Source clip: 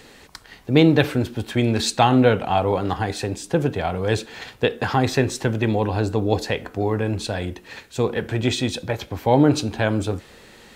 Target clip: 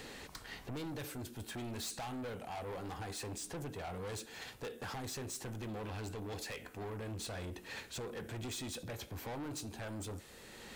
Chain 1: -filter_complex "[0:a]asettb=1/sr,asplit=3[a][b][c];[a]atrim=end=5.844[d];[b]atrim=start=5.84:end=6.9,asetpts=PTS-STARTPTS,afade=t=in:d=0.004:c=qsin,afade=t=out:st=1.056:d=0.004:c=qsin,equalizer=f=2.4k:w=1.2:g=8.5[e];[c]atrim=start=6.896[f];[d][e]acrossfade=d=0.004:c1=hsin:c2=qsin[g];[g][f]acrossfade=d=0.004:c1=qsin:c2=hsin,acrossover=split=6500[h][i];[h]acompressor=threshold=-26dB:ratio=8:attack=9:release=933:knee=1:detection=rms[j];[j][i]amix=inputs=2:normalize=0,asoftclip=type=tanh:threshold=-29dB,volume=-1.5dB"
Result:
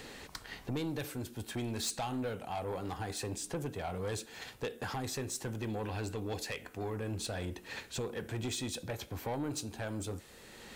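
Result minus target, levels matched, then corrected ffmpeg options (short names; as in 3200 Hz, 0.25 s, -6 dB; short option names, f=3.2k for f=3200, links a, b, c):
soft clip: distortion -6 dB
-filter_complex "[0:a]asettb=1/sr,asplit=3[a][b][c];[a]atrim=end=5.844[d];[b]atrim=start=5.84:end=6.9,asetpts=PTS-STARTPTS,afade=t=in:d=0.004:c=qsin,afade=t=out:st=1.056:d=0.004:c=qsin,equalizer=f=2.4k:w=1.2:g=8.5[e];[c]atrim=start=6.896[f];[d][e]acrossfade=d=0.004:c1=hsin:c2=qsin[g];[g][f]acrossfade=d=0.004:c1=qsin:c2=hsin,acrossover=split=6500[h][i];[h]acompressor=threshold=-26dB:ratio=8:attack=9:release=933:knee=1:detection=rms[j];[j][i]amix=inputs=2:normalize=0,asoftclip=type=tanh:threshold=-38dB,volume=-1.5dB"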